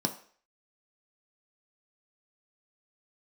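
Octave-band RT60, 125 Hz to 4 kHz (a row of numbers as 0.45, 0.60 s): 0.30, 0.40, 0.50, 0.50, 0.50, 0.50 s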